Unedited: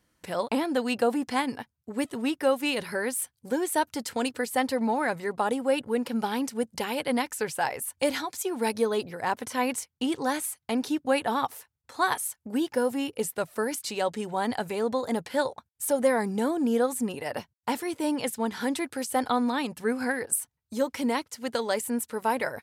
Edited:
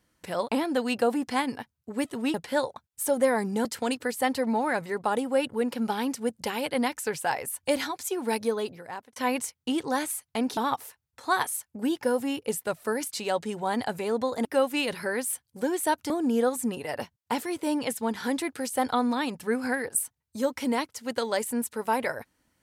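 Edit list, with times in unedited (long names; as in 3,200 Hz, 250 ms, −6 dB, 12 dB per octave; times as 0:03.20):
0:02.34–0:03.99: swap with 0:15.16–0:16.47
0:08.42–0:09.50: fade out equal-power
0:10.91–0:11.28: remove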